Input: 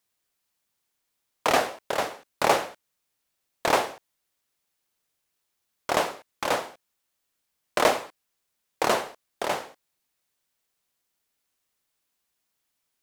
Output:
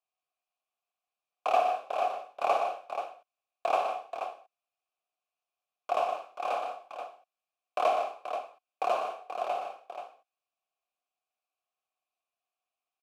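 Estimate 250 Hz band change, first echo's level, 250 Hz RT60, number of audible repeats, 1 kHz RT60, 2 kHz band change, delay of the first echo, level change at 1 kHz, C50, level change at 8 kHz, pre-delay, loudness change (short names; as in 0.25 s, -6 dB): -17.5 dB, -9.0 dB, none, 5, none, -11.5 dB, 55 ms, -1.5 dB, none, under -15 dB, none, -5.5 dB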